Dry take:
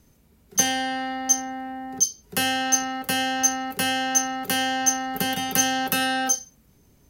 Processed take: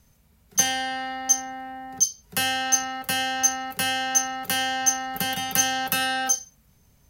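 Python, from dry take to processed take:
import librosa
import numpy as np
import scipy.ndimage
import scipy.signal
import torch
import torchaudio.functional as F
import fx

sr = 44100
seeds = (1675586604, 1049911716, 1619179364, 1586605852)

y = fx.peak_eq(x, sr, hz=330.0, db=-13.0, octaves=0.84)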